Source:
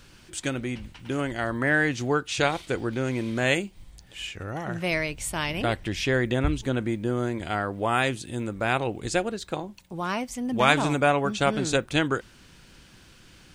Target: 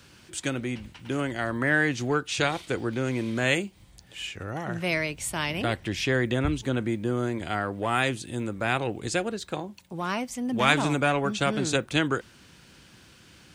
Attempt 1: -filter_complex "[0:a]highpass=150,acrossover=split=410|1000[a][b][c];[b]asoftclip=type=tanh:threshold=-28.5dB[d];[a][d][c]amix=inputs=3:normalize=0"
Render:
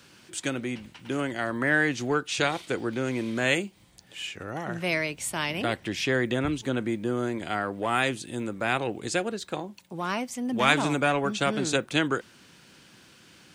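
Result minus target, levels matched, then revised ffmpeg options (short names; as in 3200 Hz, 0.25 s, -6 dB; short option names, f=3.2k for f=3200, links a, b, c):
125 Hz band -3.5 dB
-filter_complex "[0:a]highpass=71,acrossover=split=410|1000[a][b][c];[b]asoftclip=type=tanh:threshold=-28.5dB[d];[a][d][c]amix=inputs=3:normalize=0"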